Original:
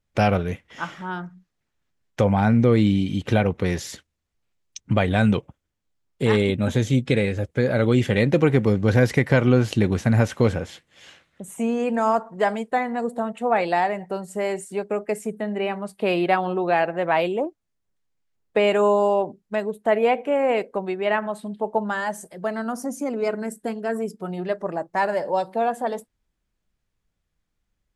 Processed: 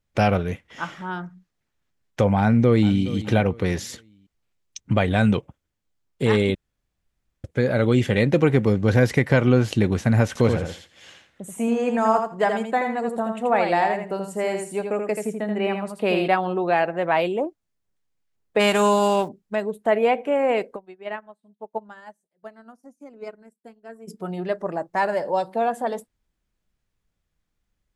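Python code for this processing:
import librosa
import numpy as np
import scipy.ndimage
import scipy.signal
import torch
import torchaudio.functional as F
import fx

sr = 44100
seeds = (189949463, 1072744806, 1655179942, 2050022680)

y = fx.echo_throw(x, sr, start_s=2.4, length_s=0.6, ms=420, feedback_pct=30, wet_db=-16.0)
y = fx.echo_feedback(y, sr, ms=82, feedback_pct=16, wet_db=-5.5, at=(10.27, 16.28))
y = fx.envelope_flatten(y, sr, power=0.6, at=(18.59, 19.27), fade=0.02)
y = fx.upward_expand(y, sr, threshold_db=-39.0, expansion=2.5, at=(20.75, 24.07), fade=0.02)
y = fx.edit(y, sr, fx.room_tone_fill(start_s=6.55, length_s=0.89), tone=tone)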